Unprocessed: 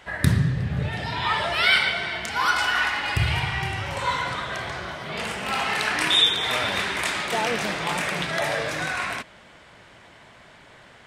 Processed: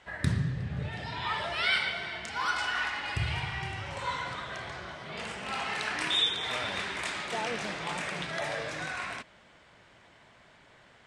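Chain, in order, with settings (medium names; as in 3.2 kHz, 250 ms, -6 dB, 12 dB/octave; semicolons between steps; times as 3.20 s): low-pass 9.3 kHz 24 dB/octave; trim -8.5 dB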